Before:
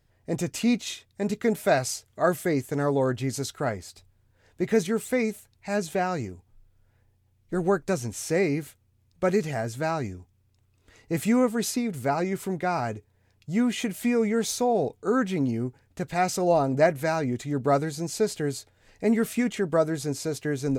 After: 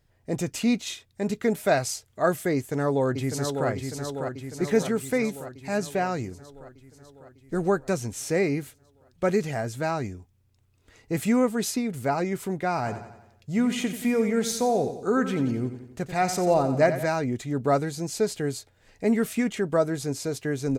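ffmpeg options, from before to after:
-filter_complex "[0:a]asplit=2[a][b];[b]afade=t=in:st=2.55:d=0.01,afade=t=out:st=3.68:d=0.01,aecho=0:1:600|1200|1800|2400|3000|3600|4200|4800|5400|6000:0.530884|0.345075|0.224299|0.145794|0.0947662|0.061598|0.0400387|0.0260252|0.0169164|0.0109956[c];[a][c]amix=inputs=2:normalize=0,asplit=3[d][e][f];[d]afade=t=out:st=12.84:d=0.02[g];[e]aecho=1:1:89|178|267|356|445|534:0.282|0.147|0.0762|0.0396|0.0206|0.0107,afade=t=in:st=12.84:d=0.02,afade=t=out:st=17.04:d=0.02[h];[f]afade=t=in:st=17.04:d=0.02[i];[g][h][i]amix=inputs=3:normalize=0"

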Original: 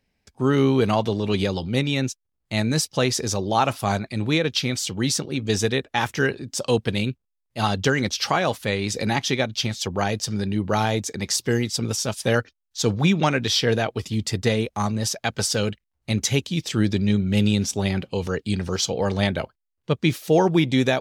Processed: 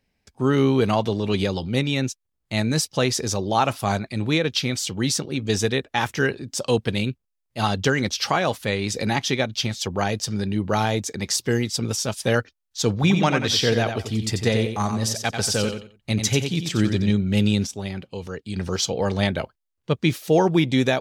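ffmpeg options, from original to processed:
-filter_complex "[0:a]asettb=1/sr,asplit=3[a][b][c];[a]atrim=end=12.934[d];[b]atrim=start=12.93:end=17.11,asetpts=PTS-STARTPTS,afade=t=in:d=0.004:c=qsin,afade=t=out:st=4.176:d=0.004:c=qsin,aecho=1:1:90|180|270:0.447|0.112|0.0279,atrim=end_sample=184338[e];[c]atrim=start=17.106[f];[d][e]acrossfade=d=0.004:c1=hsin:c2=qsin[g];[g][f]acrossfade=d=0.004:c1=qsin:c2=hsin,asplit=3[h][i][j];[h]atrim=end=17.672[k];[i]atrim=start=17.668:end=18.562,asetpts=PTS-STARTPTS,volume=-7dB[l];[j]atrim=start=18.558[m];[k][l]acrossfade=d=0.004:c1=hsin:c2=hsin[n];[n][m]acrossfade=d=0.004:c1=hsin:c2=hsin"

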